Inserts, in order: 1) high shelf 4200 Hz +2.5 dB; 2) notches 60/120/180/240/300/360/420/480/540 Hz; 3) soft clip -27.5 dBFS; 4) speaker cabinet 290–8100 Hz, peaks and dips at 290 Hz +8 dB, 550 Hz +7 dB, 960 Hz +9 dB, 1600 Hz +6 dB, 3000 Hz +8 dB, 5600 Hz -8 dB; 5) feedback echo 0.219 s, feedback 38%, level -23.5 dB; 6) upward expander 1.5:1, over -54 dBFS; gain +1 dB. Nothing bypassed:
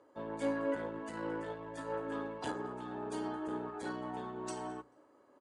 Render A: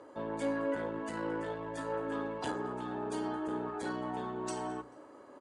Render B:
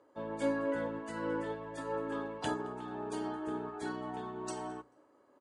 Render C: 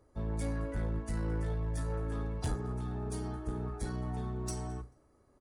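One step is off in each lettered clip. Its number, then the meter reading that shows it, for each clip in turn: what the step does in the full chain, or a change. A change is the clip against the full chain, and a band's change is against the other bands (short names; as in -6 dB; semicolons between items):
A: 6, loudness change +2.5 LU; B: 3, distortion -15 dB; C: 4, 125 Hz band +18.5 dB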